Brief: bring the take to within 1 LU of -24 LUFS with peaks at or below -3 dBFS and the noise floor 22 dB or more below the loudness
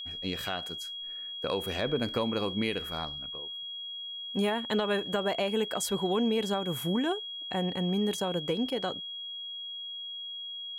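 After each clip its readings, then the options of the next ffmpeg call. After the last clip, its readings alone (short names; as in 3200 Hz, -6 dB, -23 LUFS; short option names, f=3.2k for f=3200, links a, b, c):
steady tone 3300 Hz; tone level -37 dBFS; loudness -31.5 LUFS; peak -17.5 dBFS; loudness target -24.0 LUFS
-> -af "bandreject=f=3.3k:w=30"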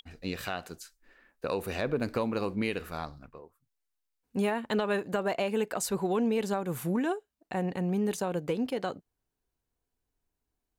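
steady tone none; loudness -31.5 LUFS; peak -18.5 dBFS; loudness target -24.0 LUFS
-> -af "volume=7.5dB"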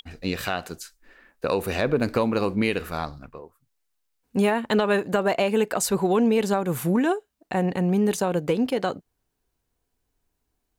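loudness -24.0 LUFS; peak -11.0 dBFS; noise floor -78 dBFS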